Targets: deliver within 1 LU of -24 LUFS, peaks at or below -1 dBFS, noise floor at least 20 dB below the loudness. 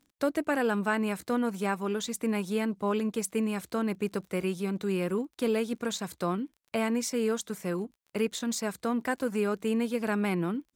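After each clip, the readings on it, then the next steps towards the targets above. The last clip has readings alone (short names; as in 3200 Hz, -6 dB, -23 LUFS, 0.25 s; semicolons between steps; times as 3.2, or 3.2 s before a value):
ticks 22/s; loudness -30.5 LUFS; peak -15.5 dBFS; loudness target -24.0 LUFS
-> de-click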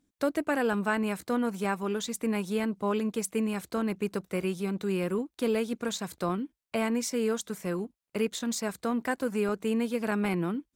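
ticks 0.093/s; loudness -30.5 LUFS; peak -15.5 dBFS; loudness target -24.0 LUFS
-> gain +6.5 dB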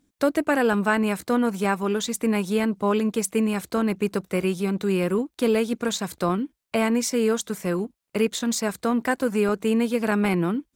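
loudness -24.0 LUFS; peak -9.0 dBFS; noise floor -77 dBFS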